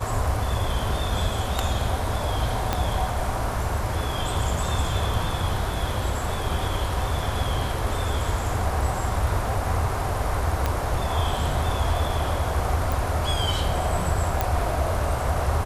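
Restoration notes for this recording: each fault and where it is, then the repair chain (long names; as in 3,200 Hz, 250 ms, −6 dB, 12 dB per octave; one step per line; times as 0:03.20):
0:02.73: click −8 dBFS
0:10.66: click −10 dBFS
0:12.92: click
0:14.41: click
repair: click removal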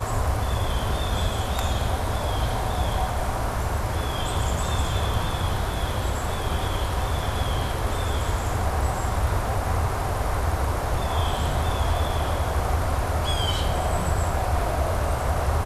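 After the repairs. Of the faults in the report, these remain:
0:02.73: click
0:10.66: click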